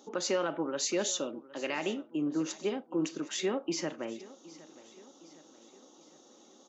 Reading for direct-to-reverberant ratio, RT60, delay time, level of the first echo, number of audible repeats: no reverb, no reverb, 764 ms, -19.5 dB, 3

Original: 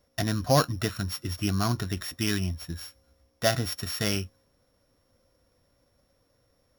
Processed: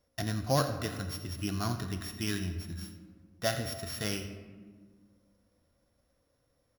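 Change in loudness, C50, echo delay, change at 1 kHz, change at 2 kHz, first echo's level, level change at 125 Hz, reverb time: -6.0 dB, 8.0 dB, 85 ms, -5.5 dB, -5.5 dB, -14.0 dB, -5.5 dB, 1.6 s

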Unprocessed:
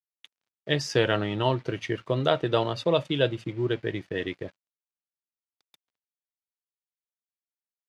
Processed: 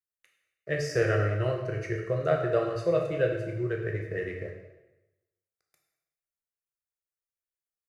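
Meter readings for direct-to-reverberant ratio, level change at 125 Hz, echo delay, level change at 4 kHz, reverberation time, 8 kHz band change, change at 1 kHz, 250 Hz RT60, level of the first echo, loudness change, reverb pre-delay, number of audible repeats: 1.0 dB, 0.0 dB, no echo, -15.0 dB, 1.0 s, no reading, -6.0 dB, 1.0 s, no echo, -2.0 dB, 7 ms, no echo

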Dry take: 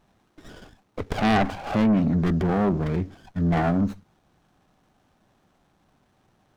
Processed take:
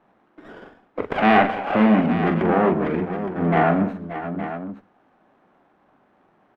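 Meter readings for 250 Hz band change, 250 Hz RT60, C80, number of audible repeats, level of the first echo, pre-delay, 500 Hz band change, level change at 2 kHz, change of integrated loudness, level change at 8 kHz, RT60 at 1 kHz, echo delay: +3.0 dB, no reverb, no reverb, 5, -7.0 dB, no reverb, +7.0 dB, +7.5 dB, +3.0 dB, no reading, no reverb, 42 ms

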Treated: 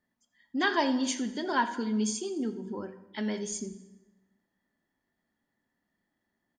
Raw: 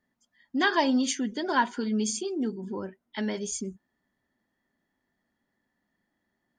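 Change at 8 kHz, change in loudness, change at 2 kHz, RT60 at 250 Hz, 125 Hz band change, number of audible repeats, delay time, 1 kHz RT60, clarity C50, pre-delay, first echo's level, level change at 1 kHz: -2.5 dB, -2.5 dB, -2.5 dB, 1.3 s, -2.0 dB, 1, 85 ms, 1.0 s, 12.5 dB, 14 ms, -18.5 dB, -2.5 dB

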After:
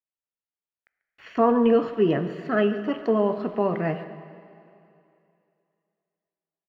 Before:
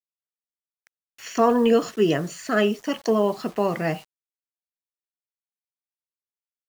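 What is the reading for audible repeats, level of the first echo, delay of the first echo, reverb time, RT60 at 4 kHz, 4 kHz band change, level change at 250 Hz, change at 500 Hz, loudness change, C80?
1, -17.5 dB, 141 ms, 2.6 s, 2.6 s, -8.5 dB, 0.0 dB, -0.5 dB, -1.0 dB, 11.5 dB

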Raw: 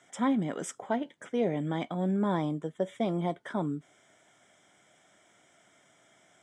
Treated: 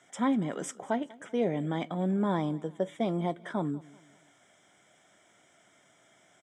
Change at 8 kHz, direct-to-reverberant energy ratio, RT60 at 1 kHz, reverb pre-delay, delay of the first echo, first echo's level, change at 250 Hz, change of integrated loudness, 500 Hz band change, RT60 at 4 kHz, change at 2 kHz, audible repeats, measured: no reading, no reverb, no reverb, no reverb, 193 ms, -22.0 dB, 0.0 dB, 0.0 dB, 0.0 dB, no reverb, 0.0 dB, 2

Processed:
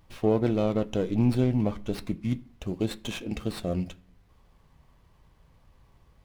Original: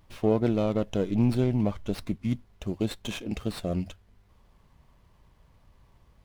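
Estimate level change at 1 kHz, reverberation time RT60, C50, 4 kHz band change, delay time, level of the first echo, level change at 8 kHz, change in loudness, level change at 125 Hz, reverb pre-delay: +0.5 dB, 0.50 s, 21.5 dB, 0.0 dB, no echo, no echo, 0.0 dB, 0.0 dB, +0.5 dB, 3 ms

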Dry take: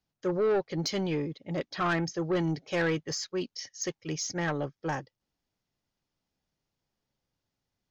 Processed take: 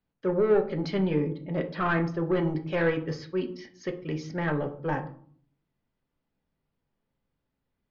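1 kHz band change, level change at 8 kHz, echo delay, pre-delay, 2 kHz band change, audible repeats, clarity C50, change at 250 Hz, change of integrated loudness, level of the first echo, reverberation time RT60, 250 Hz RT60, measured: +1.5 dB, no reading, no echo, 4 ms, +1.5 dB, no echo, 13.0 dB, +3.0 dB, +2.5 dB, no echo, 0.55 s, 0.80 s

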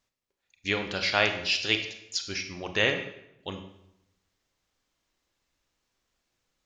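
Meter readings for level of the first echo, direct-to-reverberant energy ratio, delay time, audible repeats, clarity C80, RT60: no echo, 5.5 dB, no echo, no echo, 11.0 dB, 0.85 s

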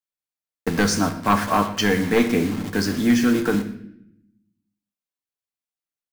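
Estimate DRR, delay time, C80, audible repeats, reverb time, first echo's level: 5.5 dB, 121 ms, 12.5 dB, 1, 0.70 s, -17.5 dB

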